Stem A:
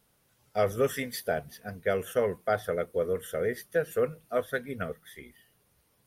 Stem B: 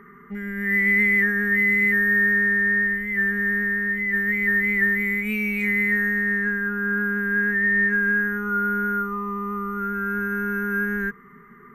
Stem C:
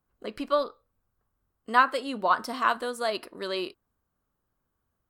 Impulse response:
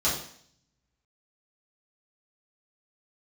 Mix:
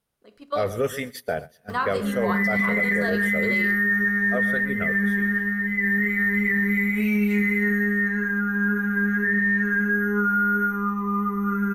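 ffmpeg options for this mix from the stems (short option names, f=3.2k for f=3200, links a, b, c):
-filter_complex "[0:a]highshelf=f=11k:g=-4.5,volume=3dB,asplit=3[a][b][c];[a]atrim=end=3.58,asetpts=PTS-STARTPTS,afade=t=out:st=3.576:d=0.004:c=hsin[d];[b]atrim=start=3.58:end=4.26,asetpts=PTS-STARTPTS,volume=0[e];[c]atrim=start=4.26,asetpts=PTS-STARTPTS,afade=t=in:d=0.004:c=hsin[f];[d][e][f]concat=n=3:v=0:a=1,asplit=2[g][h];[h]volume=-17.5dB[i];[1:a]acompressor=mode=upward:threshold=-35dB:ratio=2.5,adelay=1700,volume=-4.5dB,asplit=2[j][k];[k]volume=-6.5dB[l];[2:a]volume=-4.5dB,asplit=2[m][n];[n]volume=-19dB[o];[3:a]atrim=start_sample=2205[p];[l][o]amix=inputs=2:normalize=0[q];[q][p]afir=irnorm=-1:irlink=0[r];[i]aecho=0:1:128|256|384|512:1|0.28|0.0784|0.022[s];[g][j][m][r][s]amix=inputs=5:normalize=0,agate=range=-13dB:threshold=-33dB:ratio=16:detection=peak,alimiter=limit=-14.5dB:level=0:latency=1:release=16"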